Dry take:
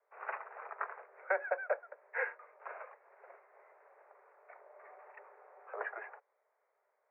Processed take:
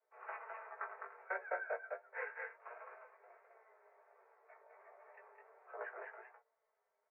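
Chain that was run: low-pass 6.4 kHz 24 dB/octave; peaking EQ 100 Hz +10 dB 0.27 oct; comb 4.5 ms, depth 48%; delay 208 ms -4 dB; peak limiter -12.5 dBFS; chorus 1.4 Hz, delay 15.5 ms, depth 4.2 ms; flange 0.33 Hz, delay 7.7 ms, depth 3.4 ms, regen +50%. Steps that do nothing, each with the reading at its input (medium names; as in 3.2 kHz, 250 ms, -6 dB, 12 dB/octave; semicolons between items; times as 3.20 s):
low-pass 6.4 kHz: input has nothing above 2.6 kHz; peaking EQ 100 Hz: input has nothing below 340 Hz; peak limiter -12.5 dBFS: peak at its input -17.5 dBFS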